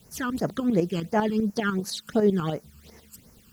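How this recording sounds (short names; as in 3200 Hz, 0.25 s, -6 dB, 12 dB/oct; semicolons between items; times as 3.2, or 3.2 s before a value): tremolo saw up 10 Hz, depth 65%; a quantiser's noise floor 10-bit, dither triangular; phasing stages 12, 2.8 Hz, lowest notch 620–3500 Hz; Vorbis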